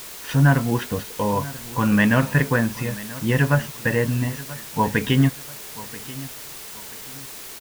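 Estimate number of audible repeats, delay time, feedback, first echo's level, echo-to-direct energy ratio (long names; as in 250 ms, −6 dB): 2, 984 ms, 32%, −18.0 dB, −17.5 dB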